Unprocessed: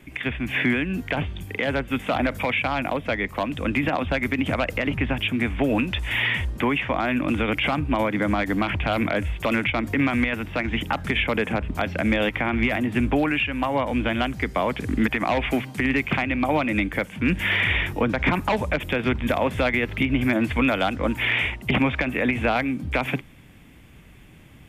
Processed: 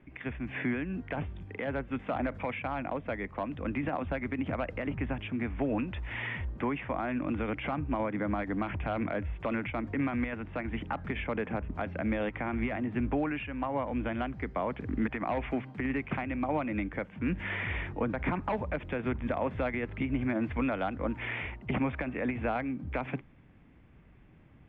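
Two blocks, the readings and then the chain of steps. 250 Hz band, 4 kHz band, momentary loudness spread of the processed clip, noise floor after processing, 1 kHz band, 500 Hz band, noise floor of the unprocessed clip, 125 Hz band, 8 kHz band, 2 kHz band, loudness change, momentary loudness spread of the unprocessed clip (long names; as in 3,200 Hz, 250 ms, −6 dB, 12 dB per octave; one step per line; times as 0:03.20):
−8.5 dB, −19.5 dB, 4 LU, −56 dBFS, −9.0 dB, −8.5 dB, −47 dBFS, −8.5 dB, can't be measured, −13.5 dB, −10.0 dB, 4 LU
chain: low-pass filter 1,700 Hz 12 dB per octave
level −8.5 dB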